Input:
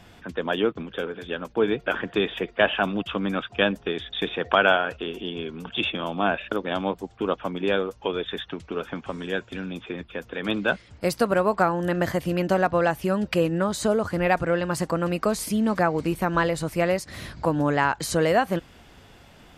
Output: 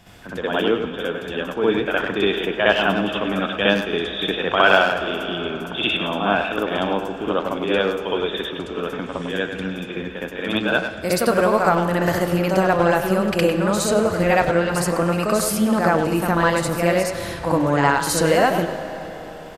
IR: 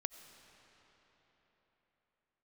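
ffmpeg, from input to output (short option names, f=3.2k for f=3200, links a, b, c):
-filter_complex "[0:a]highshelf=f=6k:g=6.5,asplit=2[a][b];[b]adelay=100,highpass=300,lowpass=3.4k,asoftclip=type=hard:threshold=-15dB,volume=-7dB[c];[a][c]amix=inputs=2:normalize=0,asplit=2[d][e];[1:a]atrim=start_sample=2205,adelay=64[f];[e][f]afir=irnorm=-1:irlink=0,volume=6.5dB[g];[d][g]amix=inputs=2:normalize=0,volume=-2dB"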